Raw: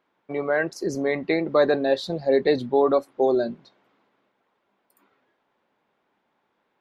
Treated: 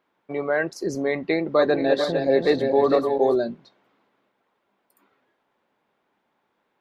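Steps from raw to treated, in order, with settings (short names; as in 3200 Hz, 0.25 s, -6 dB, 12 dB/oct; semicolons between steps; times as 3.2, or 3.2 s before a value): 1.36–3.36 regenerating reverse delay 0.228 s, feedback 56%, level -5 dB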